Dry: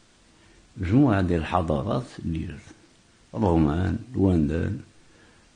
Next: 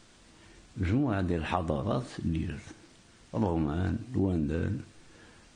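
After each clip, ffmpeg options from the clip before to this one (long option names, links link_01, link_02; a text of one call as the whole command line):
ffmpeg -i in.wav -af "acompressor=threshold=-25dB:ratio=5" out.wav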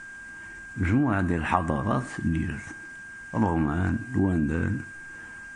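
ffmpeg -i in.wav -af "equalizer=frequency=250:width_type=o:width=1:gain=3,equalizer=frequency=500:width_type=o:width=1:gain=-6,equalizer=frequency=1000:width_type=o:width=1:gain=6,equalizer=frequency=2000:width_type=o:width=1:gain=6,equalizer=frequency=4000:width_type=o:width=1:gain=-11,equalizer=frequency=8000:width_type=o:width=1:gain=6,aeval=exprs='val(0)+0.00708*sin(2*PI*1600*n/s)':channel_layout=same,volume=3.5dB" out.wav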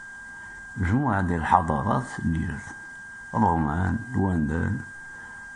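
ffmpeg -i in.wav -af "superequalizer=6b=0.501:9b=2.24:12b=0.282,volume=1dB" out.wav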